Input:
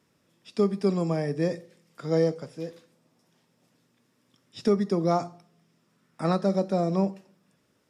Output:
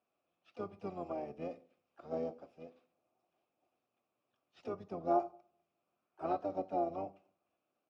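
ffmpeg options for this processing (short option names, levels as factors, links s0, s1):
-filter_complex "[0:a]asplit=3[s0][s1][s2];[s0]bandpass=f=730:t=q:w=8,volume=1[s3];[s1]bandpass=f=1090:t=q:w=8,volume=0.501[s4];[s2]bandpass=f=2440:t=q:w=8,volume=0.355[s5];[s3][s4][s5]amix=inputs=3:normalize=0,bandreject=f=1100:w=18,asplit=4[s6][s7][s8][s9];[s7]asetrate=22050,aresample=44100,atempo=2,volume=0.562[s10];[s8]asetrate=37084,aresample=44100,atempo=1.18921,volume=0.282[s11];[s9]asetrate=52444,aresample=44100,atempo=0.840896,volume=0.251[s12];[s6][s10][s11][s12]amix=inputs=4:normalize=0,volume=0.75"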